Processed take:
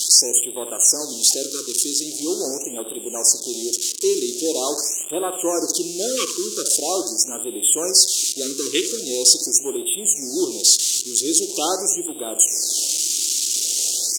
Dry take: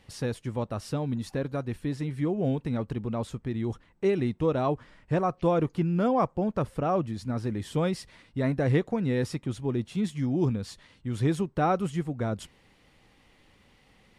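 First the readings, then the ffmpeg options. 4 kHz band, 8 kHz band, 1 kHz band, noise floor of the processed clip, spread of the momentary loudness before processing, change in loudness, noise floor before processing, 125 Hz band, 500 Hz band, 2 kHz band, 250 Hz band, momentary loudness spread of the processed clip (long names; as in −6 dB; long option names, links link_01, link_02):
+25.5 dB, +36.0 dB, −0.5 dB, −32 dBFS, 8 LU, +10.5 dB, −62 dBFS, below −20 dB, +4.0 dB, +1.5 dB, −0.5 dB, 9 LU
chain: -filter_complex "[0:a]aeval=exprs='val(0)+0.5*0.0251*sgn(val(0))':channel_layout=same,afwtdn=0.02,highpass=frequency=350:width_type=q:width=3.7,aemphasis=mode=production:type=riaa,aexciter=amount=15.5:drive=7.5:freq=2900,areverse,acompressor=mode=upward:threshold=-21dB:ratio=2.5,areverse,lowpass=frequency=6900:width_type=q:width=2.2,asplit=2[link_01][link_02];[link_02]adelay=66,lowpass=frequency=1500:poles=1,volume=-9dB,asplit=2[link_03][link_04];[link_04]adelay=66,lowpass=frequency=1500:poles=1,volume=0.5,asplit=2[link_05][link_06];[link_06]adelay=66,lowpass=frequency=1500:poles=1,volume=0.5,asplit=2[link_07][link_08];[link_08]adelay=66,lowpass=frequency=1500:poles=1,volume=0.5,asplit=2[link_09][link_10];[link_10]adelay=66,lowpass=frequency=1500:poles=1,volume=0.5,asplit=2[link_11][link_12];[link_12]adelay=66,lowpass=frequency=1500:poles=1,volume=0.5[link_13];[link_03][link_05][link_07][link_09][link_11][link_13]amix=inputs=6:normalize=0[link_14];[link_01][link_14]amix=inputs=2:normalize=0,afftfilt=real='re*(1-between(b*sr/1024,680*pow(5400/680,0.5+0.5*sin(2*PI*0.43*pts/sr))/1.41,680*pow(5400/680,0.5+0.5*sin(2*PI*0.43*pts/sr))*1.41))':imag='im*(1-between(b*sr/1024,680*pow(5400/680,0.5+0.5*sin(2*PI*0.43*pts/sr))/1.41,680*pow(5400/680,0.5+0.5*sin(2*PI*0.43*pts/sr))*1.41))':win_size=1024:overlap=0.75,volume=-2dB"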